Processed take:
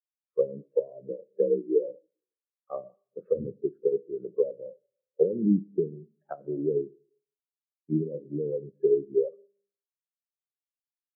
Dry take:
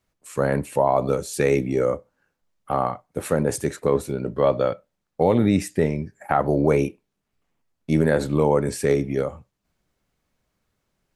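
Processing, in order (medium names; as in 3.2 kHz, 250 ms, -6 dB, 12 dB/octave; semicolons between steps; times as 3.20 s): 3.05–3.60 s: octave divider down 1 oct, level +3 dB; low-pass that closes with the level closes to 310 Hz, closed at -17 dBFS; 1.09–1.87 s: frequency shift +50 Hz; cabinet simulation 230–2500 Hz, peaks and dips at 250 Hz -9 dB, 800 Hz -9 dB, 2.1 kHz -3 dB; Schroeder reverb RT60 1.4 s, combs from 31 ms, DRR 9 dB; spectral contrast expander 2.5:1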